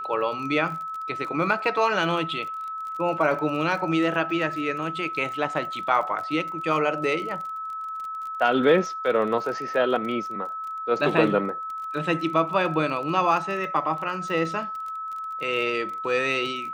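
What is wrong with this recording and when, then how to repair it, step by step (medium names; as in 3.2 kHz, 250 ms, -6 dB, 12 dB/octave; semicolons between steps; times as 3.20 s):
crackle 27 per s -33 dBFS
whine 1.3 kHz -30 dBFS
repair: de-click; band-stop 1.3 kHz, Q 30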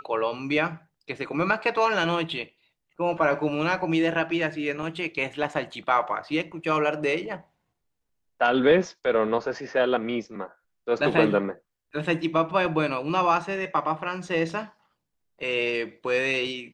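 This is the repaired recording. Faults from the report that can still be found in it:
nothing left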